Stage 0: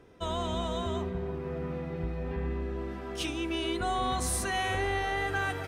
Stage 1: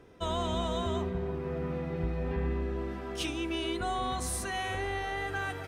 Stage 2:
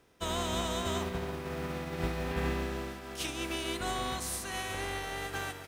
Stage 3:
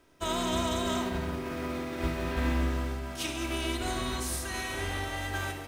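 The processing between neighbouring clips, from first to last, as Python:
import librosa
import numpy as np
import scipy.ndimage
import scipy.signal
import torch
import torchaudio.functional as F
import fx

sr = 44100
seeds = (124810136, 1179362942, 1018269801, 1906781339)

y1 = fx.rider(x, sr, range_db=10, speed_s=2.0)
y1 = y1 * librosa.db_to_amplitude(-1.5)
y2 = fx.spec_flatten(y1, sr, power=0.61)
y2 = fx.upward_expand(y2, sr, threshold_db=-47.0, expansion=1.5)
y3 = fx.room_shoebox(y2, sr, seeds[0], volume_m3=3900.0, walls='furnished', distance_m=2.8)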